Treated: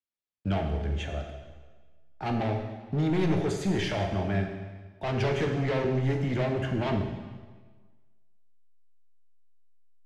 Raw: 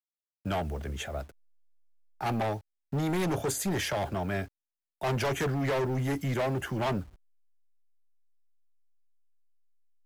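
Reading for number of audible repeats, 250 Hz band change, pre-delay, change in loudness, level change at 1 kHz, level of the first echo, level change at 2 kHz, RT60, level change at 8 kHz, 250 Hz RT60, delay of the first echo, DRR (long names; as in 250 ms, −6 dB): no echo audible, +3.5 dB, 4 ms, +2.0 dB, −1.0 dB, no echo audible, 0.0 dB, 1.4 s, −9.5 dB, 1.4 s, no echo audible, 2.5 dB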